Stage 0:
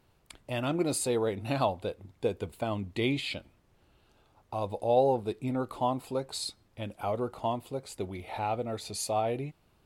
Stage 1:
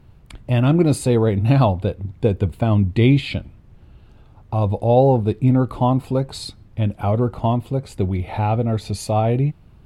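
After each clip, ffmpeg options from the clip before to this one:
-af "bass=f=250:g=14,treble=f=4k:g=-7,volume=8dB"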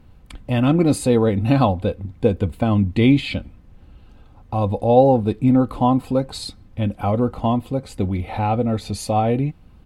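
-af "aecho=1:1:3.9:0.41"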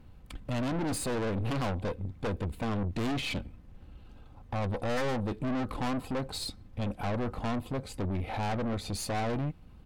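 -af "aeval=exprs='0.282*(abs(mod(val(0)/0.282+3,4)-2)-1)':c=same,aeval=exprs='(tanh(22.4*val(0)+0.5)-tanh(0.5))/22.4':c=same,volume=-2.5dB"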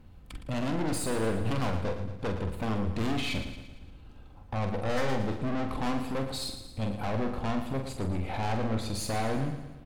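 -filter_complex "[0:a]asplit=2[a][b];[b]adelay=45,volume=-7dB[c];[a][c]amix=inputs=2:normalize=0,aecho=1:1:114|228|342|456|570|684:0.316|0.164|0.0855|0.0445|0.0231|0.012"

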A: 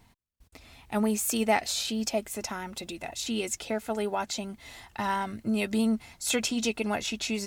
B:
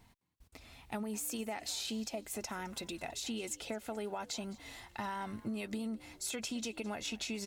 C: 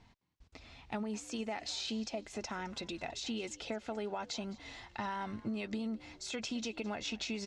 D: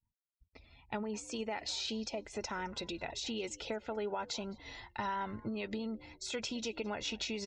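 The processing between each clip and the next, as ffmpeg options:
-filter_complex "[0:a]alimiter=limit=-22dB:level=0:latency=1:release=140,acompressor=threshold=-32dB:ratio=6,asplit=4[a][b][c][d];[b]adelay=211,afreqshift=78,volume=-20.5dB[e];[c]adelay=422,afreqshift=156,volume=-29.6dB[f];[d]adelay=633,afreqshift=234,volume=-38.7dB[g];[a][e][f][g]amix=inputs=4:normalize=0,volume=-3.5dB"
-af "lowpass=f=6.2k:w=0.5412,lowpass=f=6.2k:w=1.3066,volume=1dB"
-af "afftdn=nr=21:nf=-58,aecho=1:1:2.1:0.31,agate=range=-33dB:threshold=-49dB:ratio=3:detection=peak,volume=1dB"

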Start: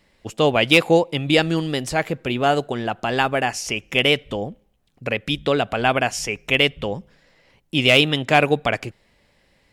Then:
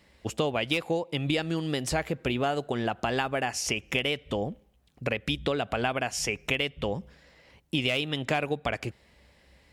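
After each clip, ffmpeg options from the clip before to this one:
-af "acompressor=threshold=-25dB:ratio=6,highpass=42,equalizer=f=64:w=5.8:g=14"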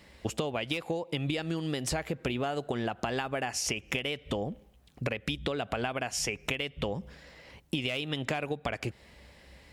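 -af "acompressor=threshold=-34dB:ratio=6,volume=5dB"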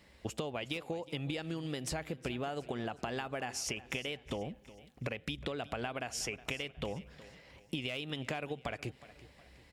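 -af "aecho=1:1:365|730|1095|1460:0.126|0.0554|0.0244|0.0107,volume=-6dB"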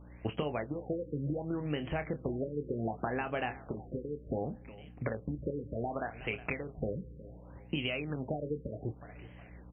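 -filter_complex "[0:a]aeval=exprs='val(0)+0.002*(sin(2*PI*60*n/s)+sin(2*PI*2*60*n/s)/2+sin(2*PI*3*60*n/s)/3+sin(2*PI*4*60*n/s)/4+sin(2*PI*5*60*n/s)/5)':c=same,asplit=2[a][b];[b]adelay=27,volume=-9dB[c];[a][c]amix=inputs=2:normalize=0,afftfilt=real='re*lt(b*sr/1024,530*pow(3300/530,0.5+0.5*sin(2*PI*0.67*pts/sr)))':imag='im*lt(b*sr/1024,530*pow(3300/530,0.5+0.5*sin(2*PI*0.67*pts/sr)))':win_size=1024:overlap=0.75,volume=3.5dB"

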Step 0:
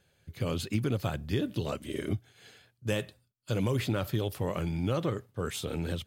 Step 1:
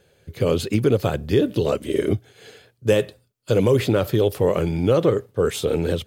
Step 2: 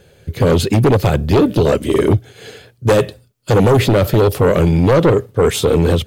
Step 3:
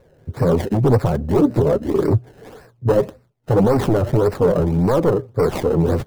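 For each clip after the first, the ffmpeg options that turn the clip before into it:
-af "equalizer=f=450:t=o:w=0.81:g=10,volume=7.5dB"
-af "lowshelf=f=210:g=5.5,aeval=exprs='0.631*(cos(1*acos(clip(val(0)/0.631,-1,1)))-cos(1*PI/2))+0.224*(cos(5*acos(clip(val(0)/0.631,-1,1)))-cos(5*PI/2))':c=same"
-filter_complex "[0:a]flanger=delay=3.2:depth=5.5:regen=32:speed=1.6:shape=triangular,acrossover=split=1400[a][b];[b]acrusher=samples=26:mix=1:aa=0.000001:lfo=1:lforange=26:lforate=1.8[c];[a][c]amix=inputs=2:normalize=0"

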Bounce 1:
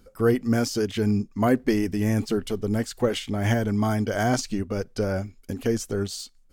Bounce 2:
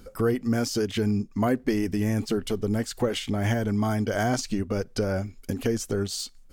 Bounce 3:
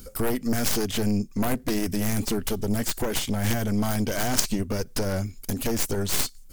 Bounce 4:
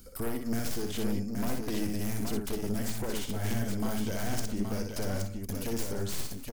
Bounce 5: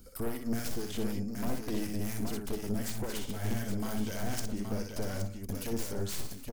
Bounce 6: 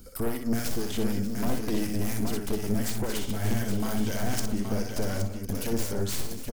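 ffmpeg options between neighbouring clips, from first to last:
-af "acompressor=threshold=-36dB:ratio=2,volume=7dB"
-af "crystalizer=i=5:c=0,aeval=exprs='0.668*(cos(1*acos(clip(val(0)/0.668,-1,1)))-cos(1*PI/2))+0.188*(cos(3*acos(clip(val(0)/0.668,-1,1)))-cos(3*PI/2))+0.0668*(cos(7*acos(clip(val(0)/0.668,-1,1)))-cos(7*PI/2))+0.0299*(cos(8*acos(clip(val(0)/0.668,-1,1)))-cos(8*PI/2))':c=same,lowshelf=f=330:g=8,volume=2dB"
-filter_complex "[0:a]acrossover=split=490[a][b];[b]acompressor=threshold=-29dB:ratio=4[c];[a][c]amix=inputs=2:normalize=0,asplit=2[d][e];[e]aecho=0:1:61|182|201|822:0.596|0.119|0.141|0.562[f];[d][f]amix=inputs=2:normalize=0,volume=-8.5dB"
-filter_complex "[0:a]acrossover=split=1100[a][b];[a]aeval=exprs='val(0)*(1-0.5/2+0.5/2*cos(2*PI*4*n/s))':c=same[c];[b]aeval=exprs='val(0)*(1-0.5/2-0.5/2*cos(2*PI*4*n/s))':c=same[d];[c][d]amix=inputs=2:normalize=0"
-af "aecho=1:1:588:0.224,volume=5.5dB"

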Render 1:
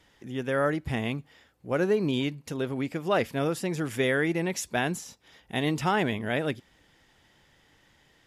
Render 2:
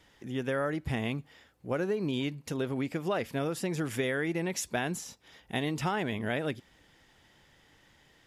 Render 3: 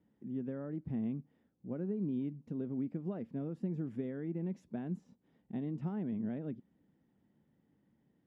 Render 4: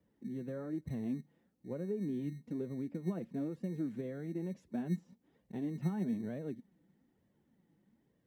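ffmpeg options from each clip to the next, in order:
-af "acompressor=threshold=-27dB:ratio=6"
-af "bandpass=f=210:t=q:w=2.5:csg=0,volume=1dB"
-filter_complex "[0:a]flanger=delay=1.7:depth=4.3:regen=29:speed=1.1:shape=sinusoidal,acrossover=split=140[a][b];[a]acrusher=samples=22:mix=1:aa=0.000001[c];[c][b]amix=inputs=2:normalize=0,volume=4.5dB"

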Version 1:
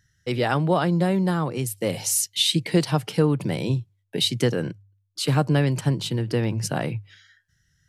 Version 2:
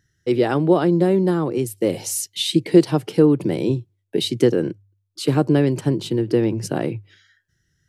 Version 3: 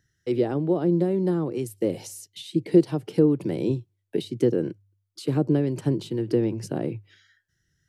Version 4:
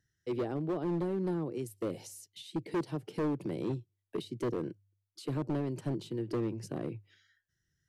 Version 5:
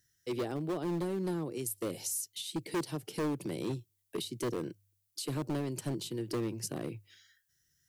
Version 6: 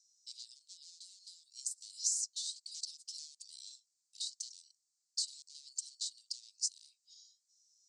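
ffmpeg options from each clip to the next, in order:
-af "equalizer=f=350:t=o:w=1.1:g=13.5,volume=-2.5dB"
-filter_complex "[0:a]acrossover=split=630[a][b];[a]tremolo=f=2.2:d=0.33[c];[b]acompressor=threshold=-36dB:ratio=6[d];[c][d]amix=inputs=2:normalize=0,volume=-3.5dB"
-af "asoftclip=type=hard:threshold=-19.5dB,volume=-8.5dB"
-af "crystalizer=i=4.5:c=0,volume=-1.5dB"
-af "asuperpass=centerf=5900:order=8:qfactor=1.5,volume=7dB"

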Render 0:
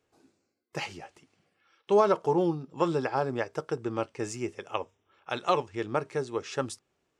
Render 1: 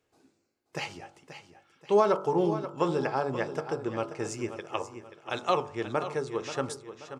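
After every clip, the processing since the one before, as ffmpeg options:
-filter_complex "[0:a]bandreject=f=48.06:t=h:w=4,bandreject=f=96.12:t=h:w=4,bandreject=f=144.18:t=h:w=4,bandreject=f=192.24:t=h:w=4,bandreject=f=240.3:t=h:w=4,bandreject=f=288.36:t=h:w=4,bandreject=f=336.42:t=h:w=4,bandreject=f=384.48:t=h:w=4,bandreject=f=432.54:t=h:w=4,bandreject=f=480.6:t=h:w=4,bandreject=f=528.66:t=h:w=4,bandreject=f=576.72:t=h:w=4,bandreject=f=624.78:t=h:w=4,bandreject=f=672.84:t=h:w=4,bandreject=f=720.9:t=h:w=4,bandreject=f=768.96:t=h:w=4,bandreject=f=817.02:t=h:w=4,bandreject=f=865.08:t=h:w=4,bandreject=f=913.14:t=h:w=4,bandreject=f=961.2:t=h:w=4,bandreject=f=1.00926k:t=h:w=4,bandreject=f=1.05732k:t=h:w=4,bandreject=f=1.10538k:t=h:w=4,bandreject=f=1.15344k:t=h:w=4,bandreject=f=1.2015k:t=h:w=4,bandreject=f=1.24956k:t=h:w=4,bandreject=f=1.29762k:t=h:w=4,bandreject=f=1.34568k:t=h:w=4,bandreject=f=1.39374k:t=h:w=4,bandreject=f=1.4418k:t=h:w=4,bandreject=f=1.48986k:t=h:w=4,asplit=2[a][b];[b]aecho=0:1:532|1064|1596|2128:0.266|0.104|0.0405|0.0158[c];[a][c]amix=inputs=2:normalize=0"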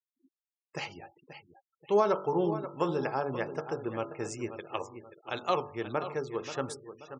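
-af "afftfilt=real='re*gte(hypot(re,im),0.00501)':imag='im*gte(hypot(re,im),0.00501)':win_size=1024:overlap=0.75,volume=-2.5dB"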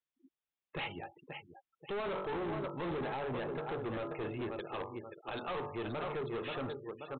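-af "alimiter=level_in=0.5dB:limit=-24dB:level=0:latency=1:release=51,volume=-0.5dB,aresample=8000,asoftclip=type=hard:threshold=-38dB,aresample=44100,volume=3dB"

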